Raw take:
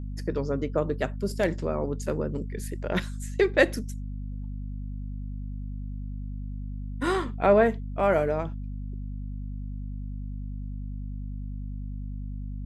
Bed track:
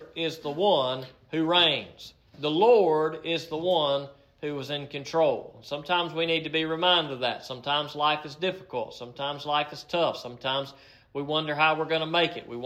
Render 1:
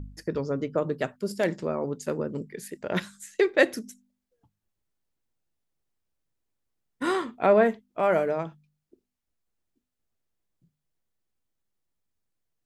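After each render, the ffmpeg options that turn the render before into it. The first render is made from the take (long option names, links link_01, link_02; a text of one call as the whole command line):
ffmpeg -i in.wav -af "bandreject=frequency=50:width_type=h:width=4,bandreject=frequency=100:width_type=h:width=4,bandreject=frequency=150:width_type=h:width=4,bandreject=frequency=200:width_type=h:width=4,bandreject=frequency=250:width_type=h:width=4" out.wav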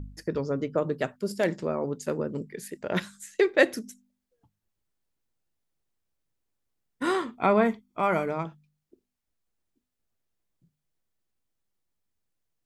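ffmpeg -i in.wav -filter_complex "[0:a]asettb=1/sr,asplit=3[link_01][link_02][link_03];[link_01]atrim=end=7.374[link_04];[link_02]atrim=start=7.37:end=8.45,asetpts=PTS-STARTPTS,afade=type=in:duration=0.004:curve=qsin,afade=type=out:start_time=1.076:duration=0.004:curve=qsin,aecho=1:1:0.9:0.5,atrim=end_sample=47628[link_05];[link_03]atrim=start=8.446[link_06];[link_04][link_05]acrossfade=duration=0.004:curve1=hsin:curve2=qsin[link_07];[link_07][link_06]acrossfade=duration=0.004:curve1=qsin:curve2=hsin" out.wav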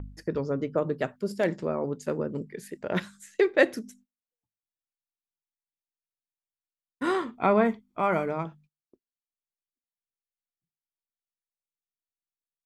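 ffmpeg -i in.wav -af "agate=range=-27dB:threshold=-55dB:ratio=16:detection=peak,highshelf=frequency=3900:gain=-6.5" out.wav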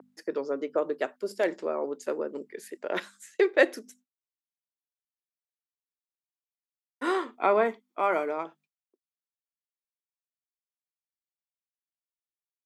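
ffmpeg -i in.wav -af "agate=range=-33dB:threshold=-52dB:ratio=3:detection=peak,highpass=frequency=310:width=0.5412,highpass=frequency=310:width=1.3066" out.wav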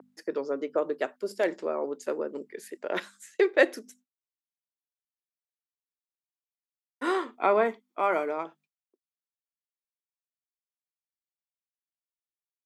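ffmpeg -i in.wav -af anull out.wav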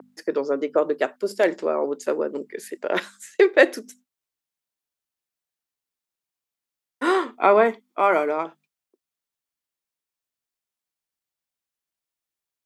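ffmpeg -i in.wav -af "volume=7dB,alimiter=limit=-2dB:level=0:latency=1" out.wav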